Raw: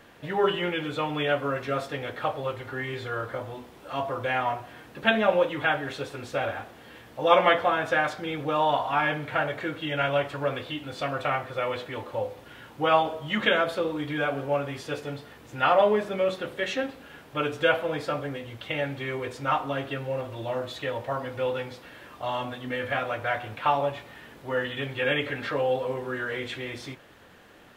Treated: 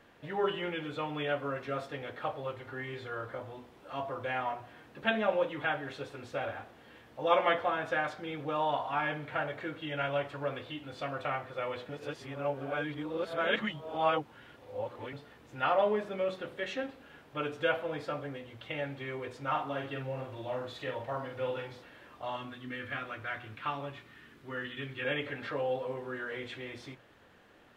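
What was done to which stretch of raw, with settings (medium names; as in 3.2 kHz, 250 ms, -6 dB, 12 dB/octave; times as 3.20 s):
11.89–15.13 s: reverse
19.50–21.84 s: doubling 46 ms -4.5 dB
22.36–25.05 s: high-order bell 670 Hz -9 dB 1.2 oct
whole clip: treble shelf 6.1 kHz -7.5 dB; hum notches 60/120/180 Hz; trim -7 dB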